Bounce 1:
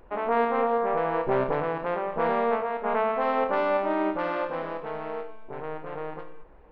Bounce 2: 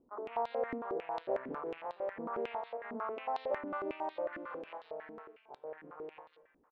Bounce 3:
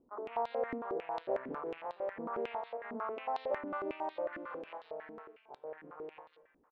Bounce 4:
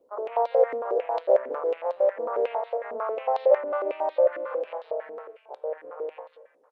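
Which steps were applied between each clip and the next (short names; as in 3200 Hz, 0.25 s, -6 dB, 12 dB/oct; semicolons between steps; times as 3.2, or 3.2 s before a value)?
bands offset in time lows, highs 0.14 s, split 1300 Hz; stepped band-pass 11 Hz 260–3900 Hz; gain -2 dB
nothing audible
resonant high-pass 530 Hz, resonance Q 4.9; gain +4.5 dB; Opus 32 kbps 48000 Hz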